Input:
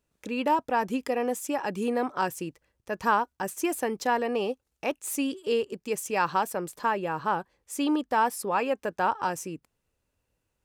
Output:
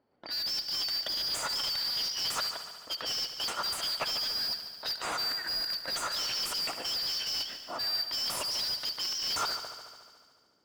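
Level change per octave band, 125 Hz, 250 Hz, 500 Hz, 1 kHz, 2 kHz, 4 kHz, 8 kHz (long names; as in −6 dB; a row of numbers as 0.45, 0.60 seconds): −11.0, −22.5, −17.0, −13.0, −6.5, +14.5, +0.5 decibels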